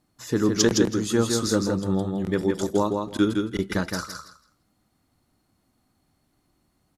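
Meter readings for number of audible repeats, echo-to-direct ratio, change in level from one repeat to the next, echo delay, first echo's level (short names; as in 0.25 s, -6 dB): 3, -4.5 dB, -15.0 dB, 0.163 s, -4.5 dB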